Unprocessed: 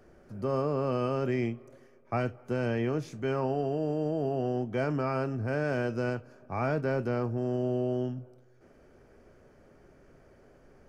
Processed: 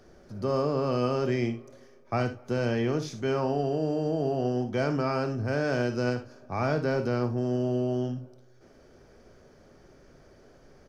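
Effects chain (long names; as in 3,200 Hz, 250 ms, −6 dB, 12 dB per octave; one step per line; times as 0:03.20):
flat-topped bell 4,600 Hz +8 dB 1.1 octaves
ambience of single reflections 57 ms −11 dB, 77 ms −16.5 dB
level +2 dB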